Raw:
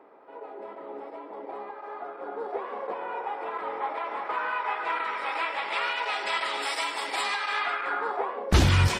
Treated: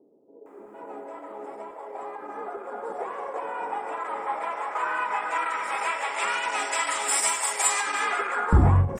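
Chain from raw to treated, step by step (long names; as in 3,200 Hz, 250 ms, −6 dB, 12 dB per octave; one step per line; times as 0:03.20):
high shelf with overshoot 5,500 Hz +10 dB, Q 3
multiband delay without the direct sound lows, highs 460 ms, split 420 Hz
every ending faded ahead of time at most 140 dB per second
level +3 dB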